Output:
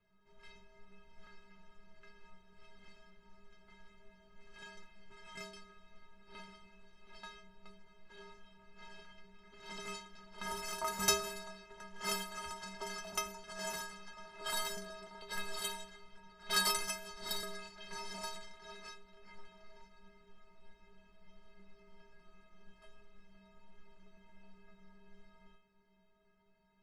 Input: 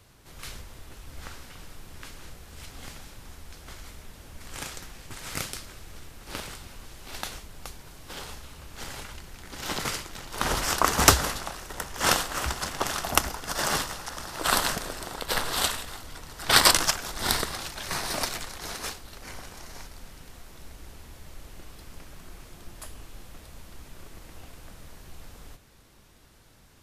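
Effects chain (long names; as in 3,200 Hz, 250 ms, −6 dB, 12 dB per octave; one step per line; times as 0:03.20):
low-pass that shuts in the quiet parts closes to 2,200 Hz, open at −22.5 dBFS
stiff-string resonator 190 Hz, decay 0.65 s, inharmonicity 0.03
level +2 dB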